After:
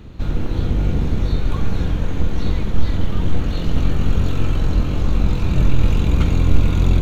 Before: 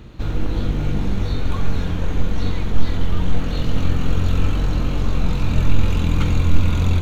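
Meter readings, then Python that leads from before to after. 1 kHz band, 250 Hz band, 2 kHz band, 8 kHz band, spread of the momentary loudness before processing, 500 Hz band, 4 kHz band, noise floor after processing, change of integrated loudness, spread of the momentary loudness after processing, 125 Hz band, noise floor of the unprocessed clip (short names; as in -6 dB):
-0.5 dB, +1.5 dB, -1.0 dB, n/a, 5 LU, +1.5 dB, -1.0 dB, -22 dBFS, +1.5 dB, 6 LU, +1.5 dB, -23 dBFS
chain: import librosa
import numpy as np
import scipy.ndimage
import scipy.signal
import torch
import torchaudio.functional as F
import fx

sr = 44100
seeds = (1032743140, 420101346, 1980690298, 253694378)

y = fx.octave_divider(x, sr, octaves=1, level_db=2.0)
y = y * librosa.db_to_amplitude(-1.0)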